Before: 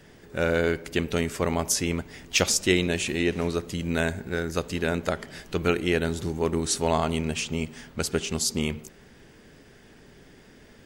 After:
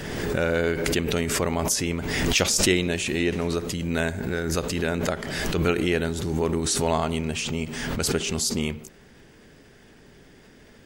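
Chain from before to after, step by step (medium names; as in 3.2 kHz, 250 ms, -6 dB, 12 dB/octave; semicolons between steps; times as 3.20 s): swell ahead of each attack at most 31 dB/s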